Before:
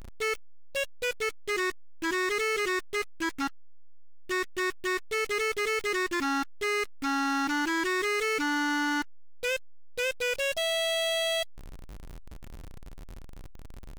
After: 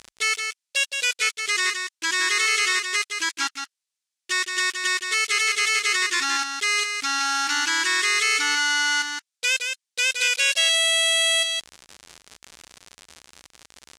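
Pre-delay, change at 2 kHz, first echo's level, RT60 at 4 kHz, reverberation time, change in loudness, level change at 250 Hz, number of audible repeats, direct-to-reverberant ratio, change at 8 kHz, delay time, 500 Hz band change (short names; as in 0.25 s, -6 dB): none, +8.5 dB, -6.0 dB, none, none, +8.0 dB, -10.5 dB, 1, none, +15.0 dB, 0.169 s, -7.0 dB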